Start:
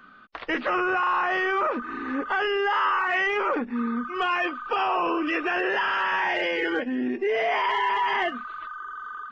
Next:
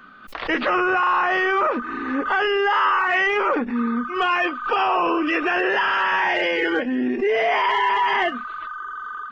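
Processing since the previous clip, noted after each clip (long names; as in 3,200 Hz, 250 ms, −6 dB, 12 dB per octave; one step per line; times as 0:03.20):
background raised ahead of every attack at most 110 dB per second
level +4.5 dB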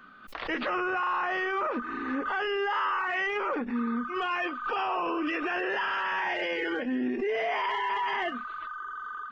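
brickwall limiter −16.5 dBFS, peak gain reduction 5 dB
level −6 dB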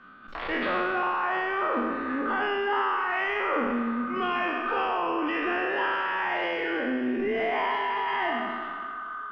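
peak hold with a decay on every bin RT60 1.56 s
high-frequency loss of the air 180 metres
delay that swaps between a low-pass and a high-pass 119 ms, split 1,400 Hz, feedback 73%, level −13.5 dB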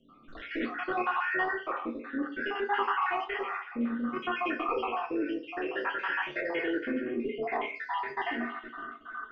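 time-frequency cells dropped at random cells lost 52%
rotating-speaker cabinet horn 0.6 Hz
on a send at −1 dB: convolution reverb RT60 0.40 s, pre-delay 3 ms
on the sum: level −1.5 dB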